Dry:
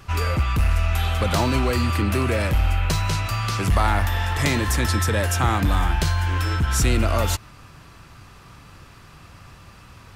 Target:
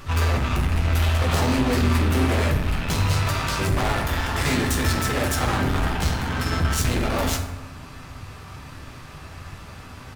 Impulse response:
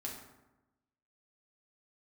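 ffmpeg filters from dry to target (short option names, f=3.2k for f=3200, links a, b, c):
-filter_complex "[0:a]asplit=4[a][b][c][d];[b]asetrate=22050,aresample=44100,atempo=2,volume=-9dB[e];[c]asetrate=35002,aresample=44100,atempo=1.25992,volume=-9dB[f];[d]asetrate=58866,aresample=44100,atempo=0.749154,volume=-12dB[g];[a][e][f][g]amix=inputs=4:normalize=0,asoftclip=type=hard:threshold=-24.5dB,asplit=2[h][i];[1:a]atrim=start_sample=2205,adelay=12[j];[i][j]afir=irnorm=-1:irlink=0,volume=-0.5dB[k];[h][k]amix=inputs=2:normalize=0,volume=2dB"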